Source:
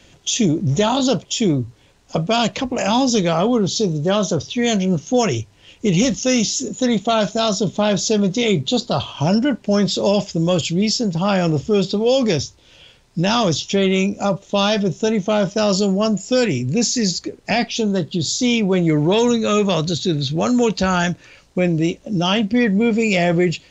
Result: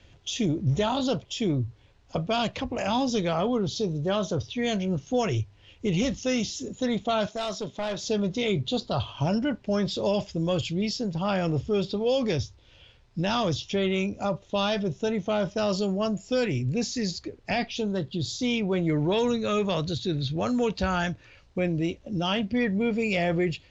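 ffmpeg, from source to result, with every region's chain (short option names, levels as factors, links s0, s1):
-filter_complex "[0:a]asettb=1/sr,asplit=3[s0][s1][s2];[s0]atrim=end=7.264[s3];[s1]atrim=start=7.26:end=8.04,asetpts=PTS-STARTPTS,afade=t=in:d=0.004:c=qsin,afade=t=out:st=0.776:d=0.004:c=qsin,highpass=f=380:p=1,asoftclip=type=hard:threshold=0.133[s4];[s2]atrim=start=8.036[s5];[s3][s4]acrossfade=d=0.004:c1=hsin:c2=qsin[s6];[s6][s5]acrossfade=d=0.004:c1=qsin:c2=hsin,lowpass=4600,lowshelf=f=130:t=q:w=1.5:g=6.5,volume=0.398"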